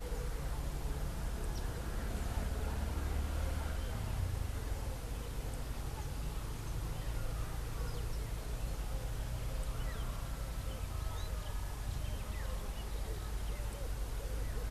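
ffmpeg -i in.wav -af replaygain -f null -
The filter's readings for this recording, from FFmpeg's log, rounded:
track_gain = +28.9 dB
track_peak = 0.037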